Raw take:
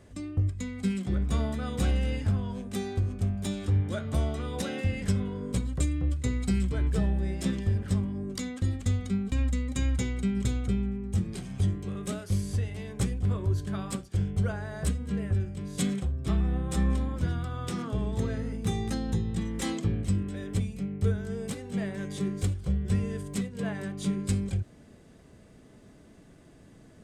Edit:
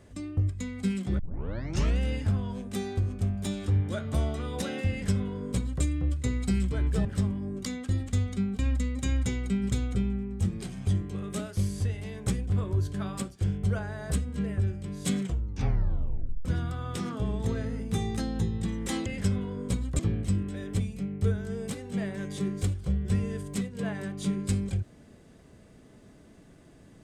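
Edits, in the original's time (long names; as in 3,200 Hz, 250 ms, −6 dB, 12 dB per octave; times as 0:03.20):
0:01.19: tape start 0.80 s
0:04.90–0:05.83: duplicate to 0:19.79
0:07.05–0:07.78: remove
0:15.95: tape stop 1.23 s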